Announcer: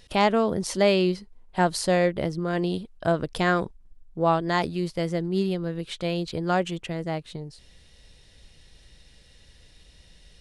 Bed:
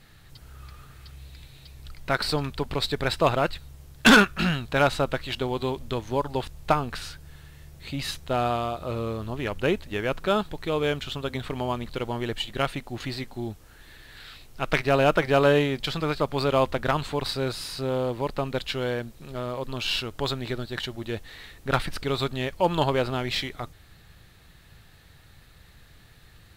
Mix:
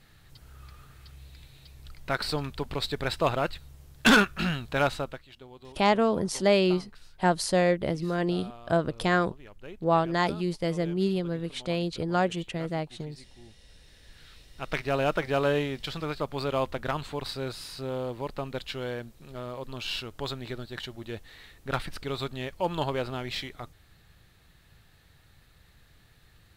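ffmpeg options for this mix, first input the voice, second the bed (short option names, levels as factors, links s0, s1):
-filter_complex "[0:a]adelay=5650,volume=0.841[s0];[1:a]volume=3.35,afade=t=out:st=4.86:d=0.39:silence=0.149624,afade=t=in:st=13.58:d=1.38:silence=0.188365[s1];[s0][s1]amix=inputs=2:normalize=0"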